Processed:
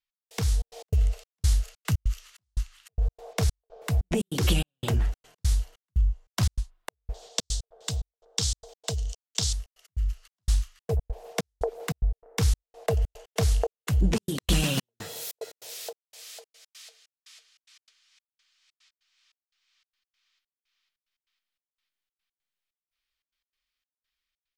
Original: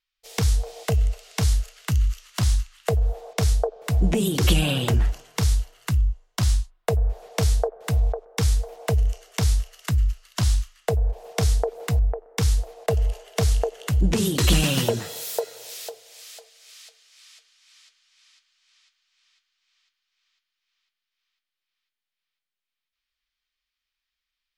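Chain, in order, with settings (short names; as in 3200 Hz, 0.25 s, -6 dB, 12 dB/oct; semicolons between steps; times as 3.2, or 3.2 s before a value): 7.14–9.53 band shelf 5100 Hz +15 dB; AGC gain up to 7.5 dB; step gate "x..xxx.x.xx" 146 bpm -60 dB; gain -8.5 dB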